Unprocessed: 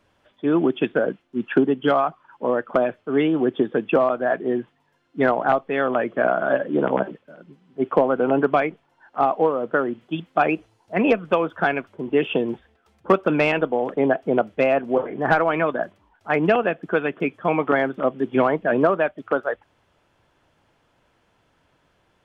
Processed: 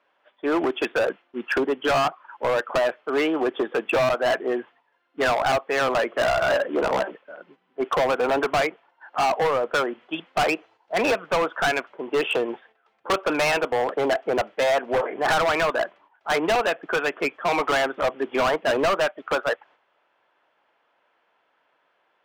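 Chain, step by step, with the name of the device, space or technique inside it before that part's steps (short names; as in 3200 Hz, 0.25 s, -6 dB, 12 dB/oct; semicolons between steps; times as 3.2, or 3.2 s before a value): walkie-talkie (BPF 590–2800 Hz; hard clip -25 dBFS, distortion -5 dB; gate -58 dBFS, range -7 dB); gain +7 dB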